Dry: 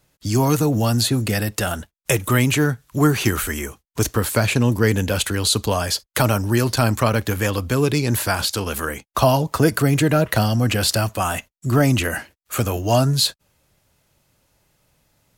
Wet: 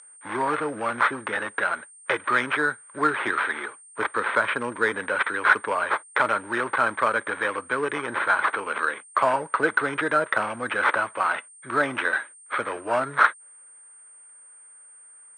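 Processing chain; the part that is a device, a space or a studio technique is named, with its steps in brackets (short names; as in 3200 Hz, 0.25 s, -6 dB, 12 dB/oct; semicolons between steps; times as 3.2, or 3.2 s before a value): toy sound module (decimation joined by straight lines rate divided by 8×; pulse-width modulation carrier 8700 Hz; speaker cabinet 700–4900 Hz, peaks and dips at 720 Hz -10 dB, 1500 Hz +5 dB, 2800 Hz -10 dB, 4500 Hz -4 dB); gain +3 dB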